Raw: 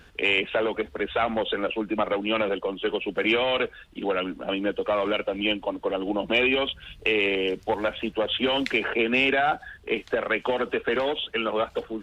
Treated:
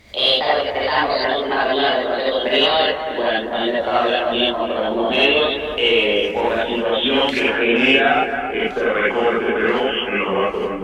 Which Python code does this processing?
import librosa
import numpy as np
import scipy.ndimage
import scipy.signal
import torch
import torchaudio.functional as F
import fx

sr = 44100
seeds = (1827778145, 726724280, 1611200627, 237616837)

y = fx.speed_glide(x, sr, from_pct=135, to_pct=87)
y = fx.echo_bbd(y, sr, ms=273, stages=4096, feedback_pct=47, wet_db=-8.0)
y = fx.rev_gated(y, sr, seeds[0], gate_ms=110, shape='rising', drr_db=-6.5)